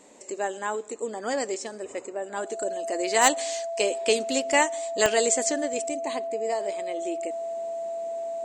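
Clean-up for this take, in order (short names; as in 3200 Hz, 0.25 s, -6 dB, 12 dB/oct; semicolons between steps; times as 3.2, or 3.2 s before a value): clip repair -8.5 dBFS; de-click; notch 670 Hz, Q 30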